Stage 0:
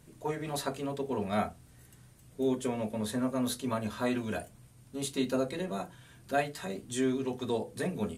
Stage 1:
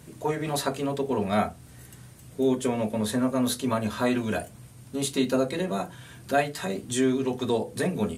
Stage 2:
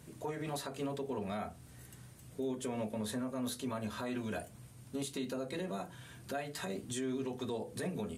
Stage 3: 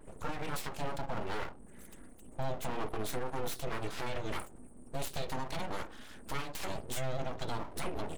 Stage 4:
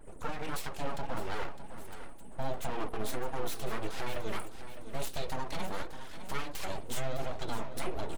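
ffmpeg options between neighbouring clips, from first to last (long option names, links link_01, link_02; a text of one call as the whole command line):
ffmpeg -i in.wav -filter_complex "[0:a]highpass=56,asplit=2[link_01][link_02];[link_02]acompressor=threshold=-40dB:ratio=6,volume=-2dB[link_03];[link_01][link_03]amix=inputs=2:normalize=0,volume=4.5dB" out.wav
ffmpeg -i in.wav -af "alimiter=limit=-22.5dB:level=0:latency=1:release=161,volume=-6.5dB" out.wav
ffmpeg -i in.wav -af "afftfilt=real='re*gte(hypot(re,im),0.00126)':imag='im*gte(hypot(re,im),0.00126)':win_size=1024:overlap=0.75,aeval=exprs='abs(val(0))':channel_layout=same,volume=4.5dB" out.wav
ffmpeg -i in.wav -af "flanger=delay=1.2:depth=4.1:regen=53:speed=1.5:shape=triangular,aecho=1:1:608|1216|1824|2432:0.266|0.0905|0.0308|0.0105,volume=4.5dB" out.wav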